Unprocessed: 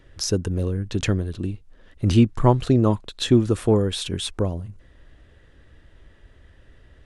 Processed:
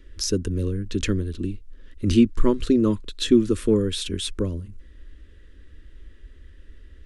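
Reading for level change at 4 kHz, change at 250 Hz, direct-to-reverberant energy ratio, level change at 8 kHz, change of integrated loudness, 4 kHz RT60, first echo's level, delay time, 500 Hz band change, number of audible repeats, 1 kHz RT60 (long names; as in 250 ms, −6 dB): −0.5 dB, +1.0 dB, no reverb audible, 0.0 dB, −1.0 dB, no reverb audible, no echo audible, no echo audible, −1.0 dB, no echo audible, no reverb audible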